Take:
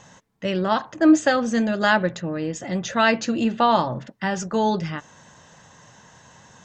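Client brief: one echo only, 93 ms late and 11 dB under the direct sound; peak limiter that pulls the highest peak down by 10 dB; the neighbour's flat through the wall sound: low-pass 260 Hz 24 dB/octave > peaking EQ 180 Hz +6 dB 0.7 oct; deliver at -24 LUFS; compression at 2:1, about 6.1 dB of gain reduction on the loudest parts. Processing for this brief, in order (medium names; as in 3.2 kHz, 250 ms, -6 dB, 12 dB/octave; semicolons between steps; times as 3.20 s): compression 2:1, threshold -21 dBFS; peak limiter -19 dBFS; low-pass 260 Hz 24 dB/octave; peaking EQ 180 Hz +6 dB 0.7 oct; delay 93 ms -11 dB; trim +4.5 dB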